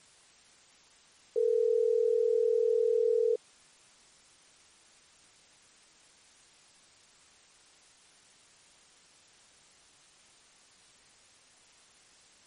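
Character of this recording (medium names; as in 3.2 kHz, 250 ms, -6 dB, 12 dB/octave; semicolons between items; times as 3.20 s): a quantiser's noise floor 10-bit, dither triangular; MP3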